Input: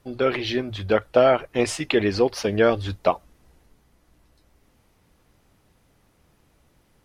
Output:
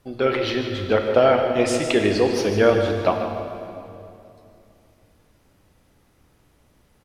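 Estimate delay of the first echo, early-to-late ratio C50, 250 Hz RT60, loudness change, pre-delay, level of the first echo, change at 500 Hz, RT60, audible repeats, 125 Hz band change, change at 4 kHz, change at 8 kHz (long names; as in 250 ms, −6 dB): 151 ms, 4.0 dB, 3.1 s, +2.0 dB, 10 ms, −10.5 dB, +2.5 dB, 2.7 s, 1, +2.5 dB, +1.5 dB, +2.0 dB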